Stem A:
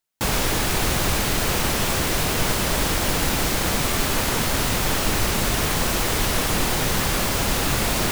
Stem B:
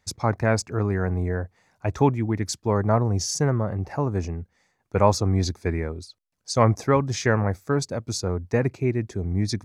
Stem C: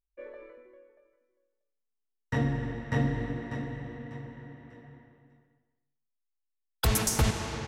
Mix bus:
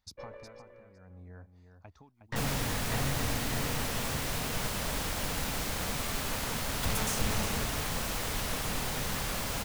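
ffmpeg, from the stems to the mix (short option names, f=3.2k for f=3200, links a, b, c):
-filter_complex "[0:a]adelay=2150,volume=-11.5dB[a];[1:a]equalizer=f=125:t=o:w=1:g=-9,equalizer=f=500:t=o:w=1:g=-9,equalizer=f=2k:t=o:w=1:g=-9,equalizer=f=4k:t=o:w=1:g=5,equalizer=f=8k:t=o:w=1:g=-11,acompressor=threshold=-35dB:ratio=6,tremolo=f=0.67:d=0.89,volume=-8dB,asplit=2[b][c];[c]volume=-8.5dB[d];[2:a]aeval=exprs='(tanh(50.1*val(0)+0.7)-tanh(0.7))/50.1':c=same,volume=2.5dB,asplit=2[e][f];[f]volume=-10.5dB[g];[d][g]amix=inputs=2:normalize=0,aecho=0:1:363:1[h];[a][b][e][h]amix=inputs=4:normalize=0,equalizer=f=350:w=4.6:g=-7.5"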